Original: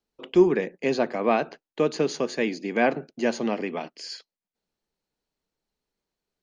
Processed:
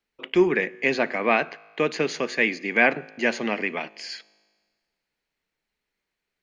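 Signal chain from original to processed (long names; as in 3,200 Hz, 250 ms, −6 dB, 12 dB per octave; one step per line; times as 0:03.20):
parametric band 2,100 Hz +13.5 dB 1.2 octaves
tuned comb filter 53 Hz, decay 1.6 s, harmonics all, mix 30%
level +1 dB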